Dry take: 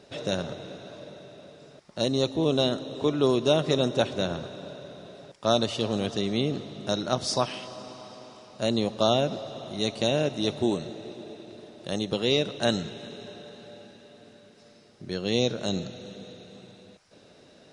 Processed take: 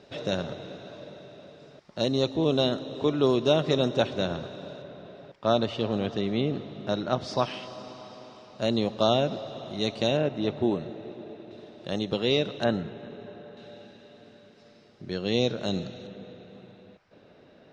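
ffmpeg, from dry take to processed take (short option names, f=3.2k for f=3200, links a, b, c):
-af "asetnsamples=n=441:p=0,asendcmd='4.82 lowpass f 3000;7.38 lowpass f 4900;10.17 lowpass f 2400;11.51 lowpass f 4300;12.64 lowpass f 1900;13.57 lowpass f 4600;16.07 lowpass f 2600',lowpass=5.1k"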